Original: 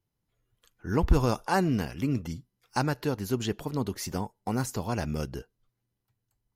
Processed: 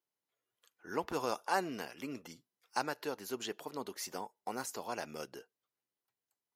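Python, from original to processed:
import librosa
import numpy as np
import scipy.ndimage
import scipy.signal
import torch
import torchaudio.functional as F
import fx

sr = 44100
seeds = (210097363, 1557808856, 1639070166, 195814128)

y = scipy.signal.sosfilt(scipy.signal.butter(2, 440.0, 'highpass', fs=sr, output='sos'), x)
y = F.gain(torch.from_numpy(y), -5.0).numpy()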